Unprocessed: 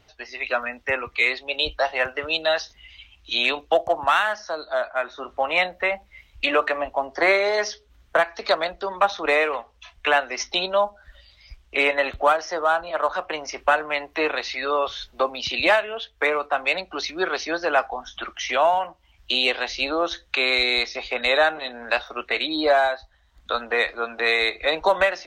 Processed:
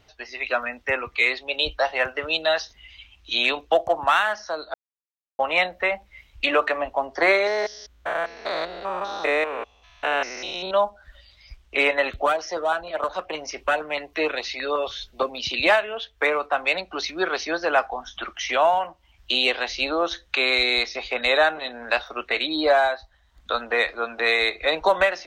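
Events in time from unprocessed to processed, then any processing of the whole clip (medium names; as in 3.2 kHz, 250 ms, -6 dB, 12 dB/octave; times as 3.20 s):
4.74–5.39 s: mute
7.47–10.71 s: spectrogram pixelated in time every 200 ms
12.10–15.62 s: LFO notch saw up 6.4 Hz 680–2000 Hz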